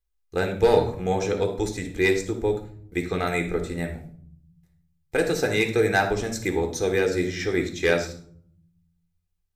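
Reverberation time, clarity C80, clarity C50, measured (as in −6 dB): 0.55 s, 13.0 dB, 8.0 dB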